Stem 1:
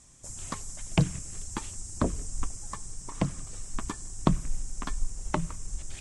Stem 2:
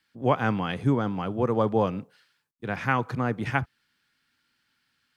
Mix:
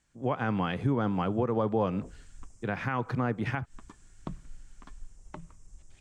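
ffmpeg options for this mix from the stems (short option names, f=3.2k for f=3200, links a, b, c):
-filter_complex "[0:a]volume=-15dB[a];[1:a]dynaudnorm=f=140:g=5:m=7.5dB,volume=-5dB,asplit=2[b][c];[c]apad=whole_len=264987[d];[a][d]sidechaincompress=threshold=-39dB:ratio=8:attack=5.4:release=102[e];[e][b]amix=inputs=2:normalize=0,highshelf=f=5.2k:g=-10,alimiter=limit=-18dB:level=0:latency=1:release=151"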